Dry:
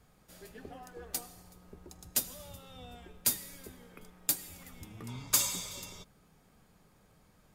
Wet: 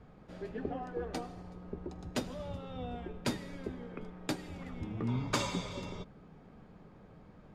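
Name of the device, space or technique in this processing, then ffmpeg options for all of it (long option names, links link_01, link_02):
phone in a pocket: -af "lowpass=3700,equalizer=frequency=290:width_type=o:width=2.5:gain=5,highshelf=frequency=2200:gain=-8.5,volume=6.5dB"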